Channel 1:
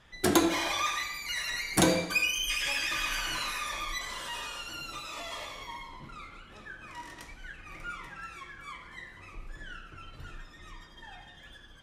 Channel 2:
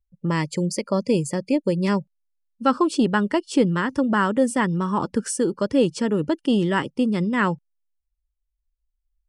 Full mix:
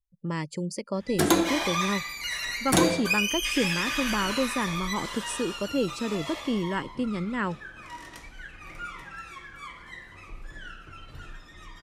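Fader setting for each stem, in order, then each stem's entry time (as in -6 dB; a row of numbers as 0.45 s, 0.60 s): +2.0 dB, -8.0 dB; 0.95 s, 0.00 s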